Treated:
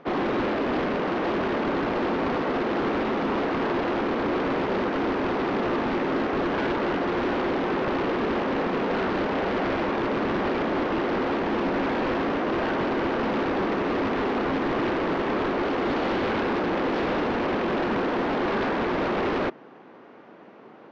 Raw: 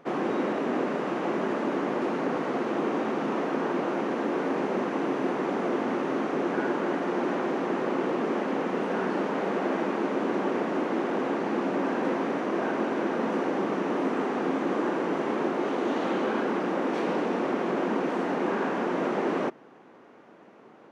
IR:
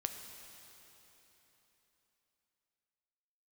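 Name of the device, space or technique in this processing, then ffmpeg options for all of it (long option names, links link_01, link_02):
synthesiser wavefolder: -af "aeval=exprs='0.0596*(abs(mod(val(0)/0.0596+3,4)-2)-1)':channel_layout=same,lowpass=frequency=4900:width=0.5412,lowpass=frequency=4900:width=1.3066,volume=4.5dB"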